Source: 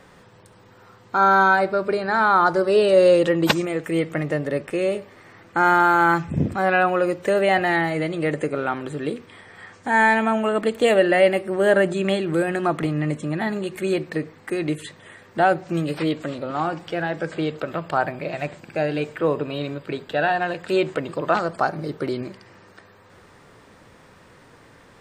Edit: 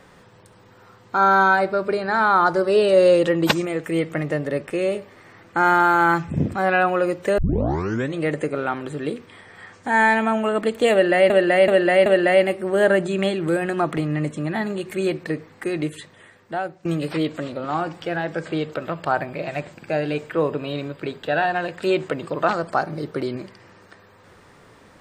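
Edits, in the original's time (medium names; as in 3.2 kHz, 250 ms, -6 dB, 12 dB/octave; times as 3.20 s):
7.38 s: tape start 0.79 s
10.92–11.30 s: loop, 4 plays
14.61–15.71 s: fade out, to -15.5 dB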